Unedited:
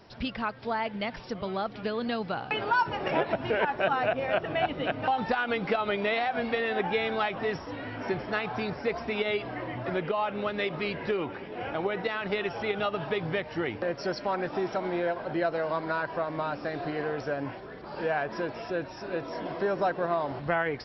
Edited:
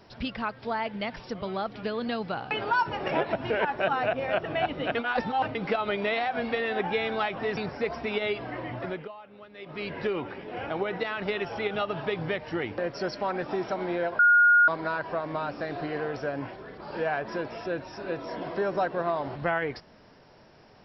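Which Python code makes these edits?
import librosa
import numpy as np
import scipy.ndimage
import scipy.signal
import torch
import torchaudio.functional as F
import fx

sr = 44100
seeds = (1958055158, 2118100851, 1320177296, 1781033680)

y = fx.edit(x, sr, fx.reverse_span(start_s=4.95, length_s=0.6),
    fx.cut(start_s=7.57, length_s=1.04),
    fx.fade_down_up(start_s=9.79, length_s=1.22, db=-17.5, fade_s=0.4),
    fx.bleep(start_s=15.23, length_s=0.49, hz=1430.0, db=-15.0), tone=tone)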